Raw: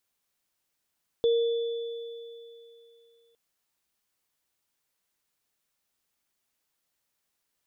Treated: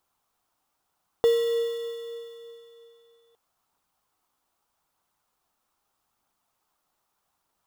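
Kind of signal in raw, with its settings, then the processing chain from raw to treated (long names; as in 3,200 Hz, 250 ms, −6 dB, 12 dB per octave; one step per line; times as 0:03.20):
inharmonic partials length 2.11 s, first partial 465 Hz, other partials 3,470 Hz, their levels −16.5 dB, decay 2.84 s, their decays 3.47 s, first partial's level −19 dB
flat-topped bell 980 Hz +11.5 dB 1.2 octaves
in parallel at −9 dB: sample-rate reduction 2,400 Hz, jitter 0%
on the sum: phase shifter 0.8 Hz, delay 3.9 ms, feedback 22%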